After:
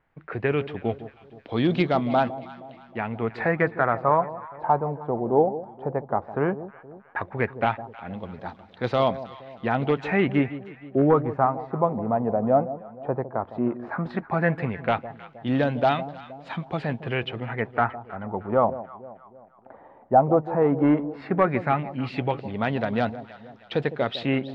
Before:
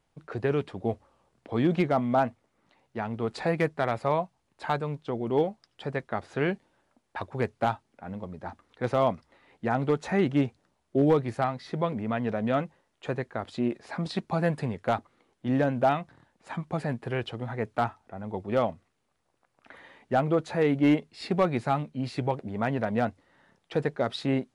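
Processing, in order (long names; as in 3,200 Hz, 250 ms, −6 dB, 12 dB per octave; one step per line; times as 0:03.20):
auto-filter low-pass sine 0.14 Hz 770–3,900 Hz
delay that swaps between a low-pass and a high-pass 157 ms, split 870 Hz, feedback 64%, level −13 dB
level +2 dB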